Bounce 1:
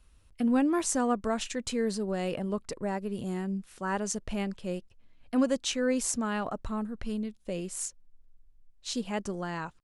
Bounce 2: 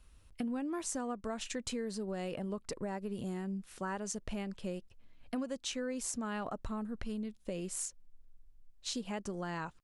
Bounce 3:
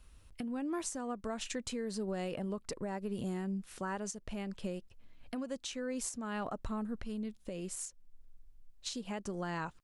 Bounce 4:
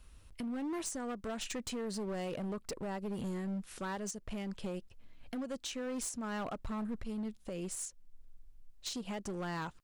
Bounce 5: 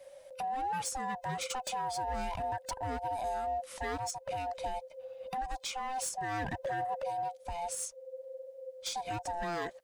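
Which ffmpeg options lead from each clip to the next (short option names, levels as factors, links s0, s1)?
-af "acompressor=threshold=0.0178:ratio=6"
-af "alimiter=level_in=2:limit=0.0631:level=0:latency=1:release=373,volume=0.501,volume=1.26"
-af "asoftclip=type=hard:threshold=0.0158,volume=1.19"
-af "afftfilt=real='real(if(lt(b,1008),b+24*(1-2*mod(floor(b/24),2)),b),0)':imag='imag(if(lt(b,1008),b+24*(1-2*mod(floor(b/24),2)),b),0)':win_size=2048:overlap=0.75,volume=1.41"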